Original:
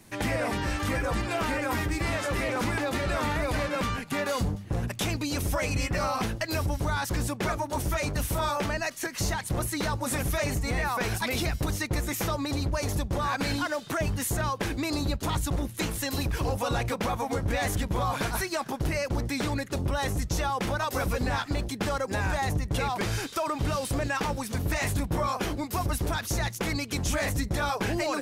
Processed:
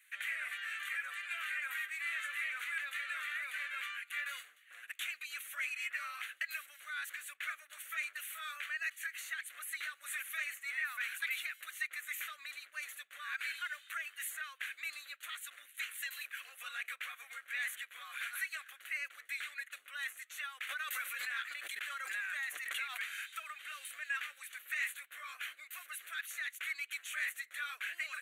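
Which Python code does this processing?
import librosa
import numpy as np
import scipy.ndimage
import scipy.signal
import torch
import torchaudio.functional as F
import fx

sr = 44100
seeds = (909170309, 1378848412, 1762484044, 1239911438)

y = scipy.signal.sosfilt(scipy.signal.butter(4, 1500.0, 'highpass', fs=sr, output='sos'), x)
y = fx.high_shelf(y, sr, hz=2300.0, db=-9.5)
y = fx.fixed_phaser(y, sr, hz=2200.0, stages=4)
y = fx.pre_swell(y, sr, db_per_s=25.0, at=(20.69, 23.0))
y = y * 10.0 ** (2.0 / 20.0)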